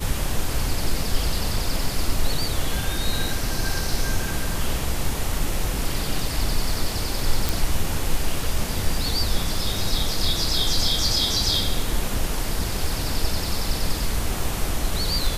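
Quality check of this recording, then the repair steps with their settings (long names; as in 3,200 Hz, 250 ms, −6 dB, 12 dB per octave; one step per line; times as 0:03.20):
0:07.49: click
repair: click removal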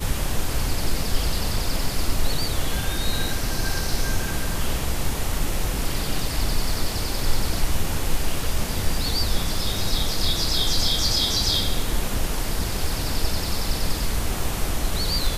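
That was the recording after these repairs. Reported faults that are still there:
none of them is left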